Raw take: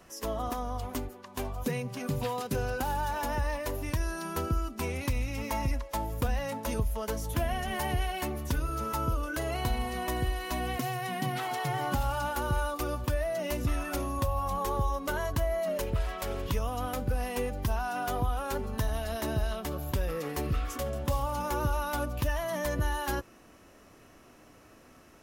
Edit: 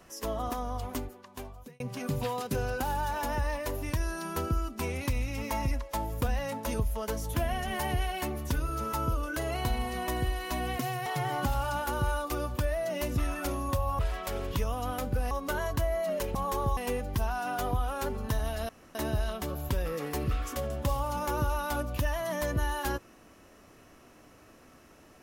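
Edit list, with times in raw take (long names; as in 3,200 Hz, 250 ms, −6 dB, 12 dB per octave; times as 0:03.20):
0:00.94–0:01.80: fade out
0:11.06–0:11.55: remove
0:14.48–0:14.90: swap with 0:15.94–0:17.26
0:19.18: splice in room tone 0.26 s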